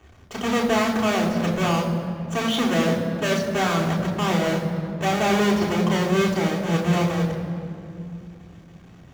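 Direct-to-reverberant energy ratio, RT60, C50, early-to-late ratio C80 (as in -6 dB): -2.5 dB, 2.8 s, 6.5 dB, 7.0 dB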